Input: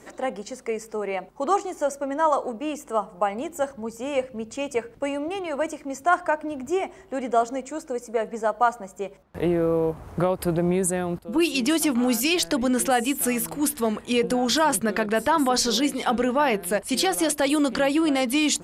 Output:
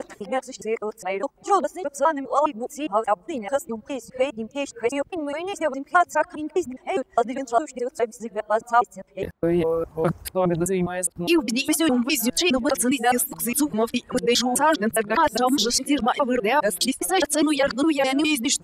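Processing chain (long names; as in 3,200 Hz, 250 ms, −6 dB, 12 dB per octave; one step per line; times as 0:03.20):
reversed piece by piece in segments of 205 ms
reverb reduction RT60 1.8 s
level +2.5 dB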